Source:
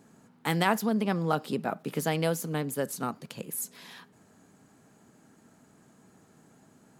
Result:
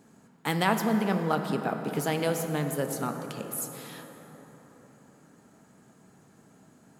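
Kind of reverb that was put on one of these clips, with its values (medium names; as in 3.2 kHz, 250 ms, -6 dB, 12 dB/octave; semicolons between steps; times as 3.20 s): plate-style reverb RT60 4.7 s, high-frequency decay 0.4×, pre-delay 0 ms, DRR 5.5 dB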